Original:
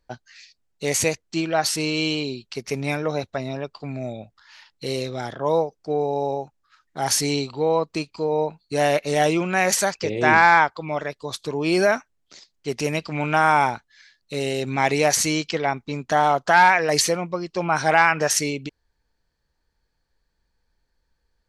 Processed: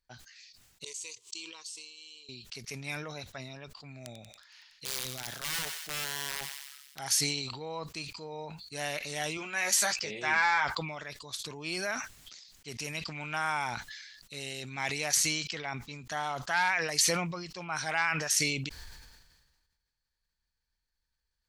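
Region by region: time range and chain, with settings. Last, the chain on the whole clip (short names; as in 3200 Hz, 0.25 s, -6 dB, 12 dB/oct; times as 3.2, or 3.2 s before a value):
0.84–2.29 HPF 200 Hz + flipped gate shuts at -27 dBFS, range -24 dB + EQ curve 120 Hz 0 dB, 190 Hz -22 dB, 420 Hz +10 dB, 700 Hz -22 dB, 1000 Hz +10 dB, 1500 Hz -13 dB, 2900 Hz +9 dB, 5500 Hz +10 dB, 8000 Hz +15 dB, 13000 Hz -6 dB
3.97–6.99 wrapped overs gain 19 dB + thinning echo 93 ms, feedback 73%, high-pass 1100 Hz, level -13 dB
9.37–10.65 low shelf 140 Hz -11.5 dB + doubler 14 ms -5 dB
whole clip: passive tone stack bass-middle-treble 5-5-5; sustainer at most 40 dB/s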